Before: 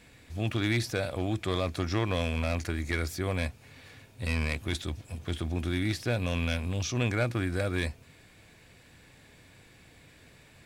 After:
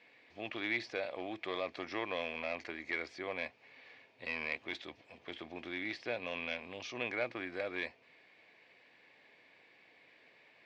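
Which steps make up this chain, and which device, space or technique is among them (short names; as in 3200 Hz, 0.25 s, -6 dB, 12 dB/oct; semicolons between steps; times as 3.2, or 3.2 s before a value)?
phone earpiece (speaker cabinet 450–4200 Hz, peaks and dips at 1400 Hz -7 dB, 2100 Hz +4 dB, 3700 Hz -5 dB); gain -4 dB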